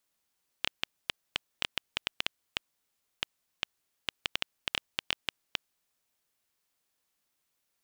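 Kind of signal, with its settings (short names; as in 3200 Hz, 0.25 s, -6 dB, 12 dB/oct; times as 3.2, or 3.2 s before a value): random clicks 5.1/s -9.5 dBFS 5.25 s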